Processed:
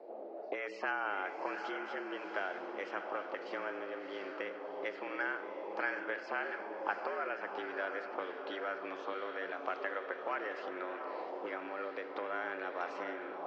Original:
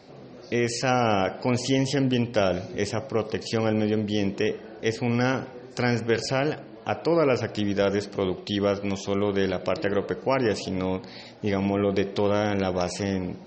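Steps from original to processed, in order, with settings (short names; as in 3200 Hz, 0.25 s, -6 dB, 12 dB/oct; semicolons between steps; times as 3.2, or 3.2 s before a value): bell 290 Hz +9 dB 0.75 oct; notches 60/120/180/240/300/360 Hz; compressor 6:1, threshold -23 dBFS, peak gain reduction 10.5 dB; BPF 130–3600 Hz; frequency shift +85 Hz; on a send: diffused feedback echo 0.721 s, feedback 53%, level -6.5 dB; on the sum: auto-wah 560–1500 Hz, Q 2.6, up, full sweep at -23.5 dBFS; gain +2 dB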